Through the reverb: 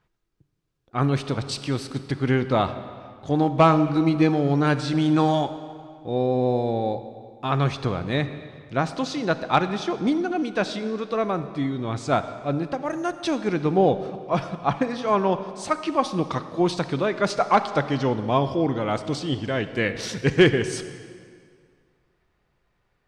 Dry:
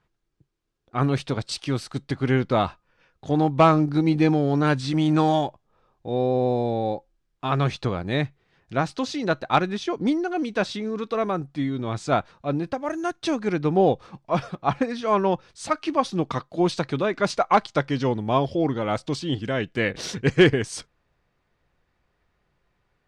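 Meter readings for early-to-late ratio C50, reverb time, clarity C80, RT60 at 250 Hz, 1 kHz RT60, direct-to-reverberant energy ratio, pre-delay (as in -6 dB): 11.5 dB, 2.1 s, 12.5 dB, 2.1 s, 2.1 s, 11.0 dB, 33 ms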